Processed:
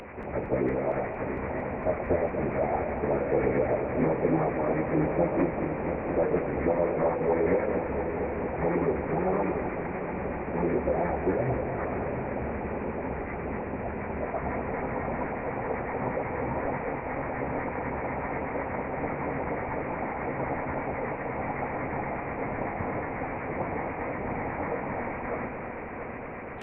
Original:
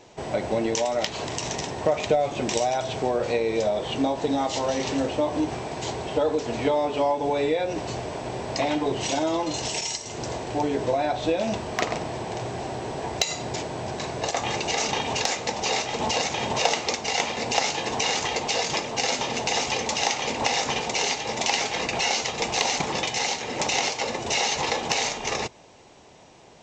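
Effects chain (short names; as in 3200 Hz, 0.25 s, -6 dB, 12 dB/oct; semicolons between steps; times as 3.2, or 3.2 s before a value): delta modulation 16 kbps, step -33 dBFS; reverse; upward compressor, threshold -38 dBFS; reverse; LFO notch sine 8.1 Hz 550–2100 Hz; formant-preserving pitch shift -9.5 st; multi-head echo 0.229 s, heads first and third, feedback 72%, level -10 dB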